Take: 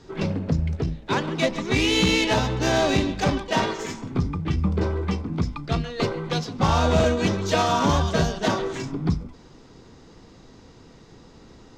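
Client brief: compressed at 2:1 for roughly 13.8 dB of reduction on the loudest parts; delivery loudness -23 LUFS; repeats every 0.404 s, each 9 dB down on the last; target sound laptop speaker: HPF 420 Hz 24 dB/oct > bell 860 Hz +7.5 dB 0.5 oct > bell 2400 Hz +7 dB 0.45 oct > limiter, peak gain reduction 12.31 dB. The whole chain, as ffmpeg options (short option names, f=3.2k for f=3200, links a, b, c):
-af "acompressor=threshold=-43dB:ratio=2,highpass=f=420:w=0.5412,highpass=f=420:w=1.3066,equalizer=f=860:t=o:w=0.5:g=7.5,equalizer=f=2.4k:t=o:w=0.45:g=7,aecho=1:1:404|808|1212|1616:0.355|0.124|0.0435|0.0152,volume=19.5dB,alimiter=limit=-13dB:level=0:latency=1"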